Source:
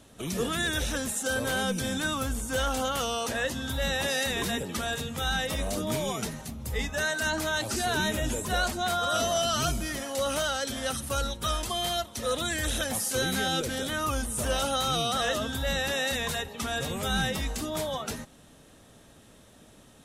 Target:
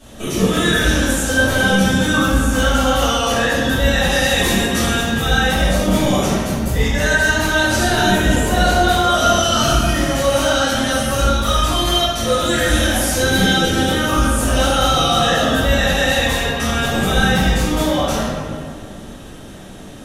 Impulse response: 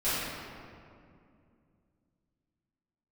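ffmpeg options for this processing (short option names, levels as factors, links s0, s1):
-filter_complex "[0:a]asettb=1/sr,asplit=3[s0][s1][s2];[s0]atrim=end=4.284[s3];[s1]atrim=start=4.28:end=4.96,asetpts=PTS-STARTPTS,afade=t=in:d=0.004:c=qsin,afade=t=out:st=0.676:d=0.004:c=qsin,equalizer=f=9500:t=o:w=1.9:g=6[s4];[s2]atrim=start=4.956[s5];[s3][s4]acrossfade=d=0.004:c1=hsin:c2=qsin[s6];[s6][s5]acrossfade=d=0.004:c1=qsin:c2=hsin,asplit=2[s7][s8];[s8]acompressor=threshold=0.0141:ratio=6,volume=1.41[s9];[s7][s9]amix=inputs=2:normalize=0[s10];[1:a]atrim=start_sample=2205,asetrate=52920,aresample=44100[s11];[s10][s11]afir=irnorm=-1:irlink=0"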